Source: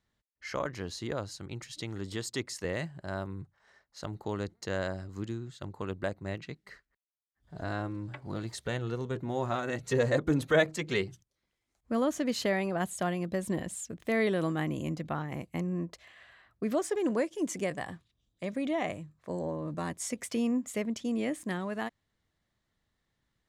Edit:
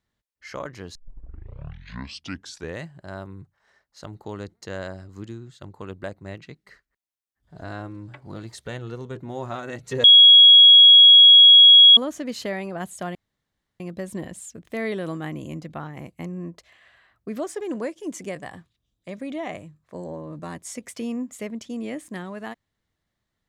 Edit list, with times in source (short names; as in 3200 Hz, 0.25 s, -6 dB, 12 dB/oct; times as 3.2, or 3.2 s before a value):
0.95 tape start 1.87 s
10.04–11.97 bleep 3320 Hz -6.5 dBFS
13.15 insert room tone 0.65 s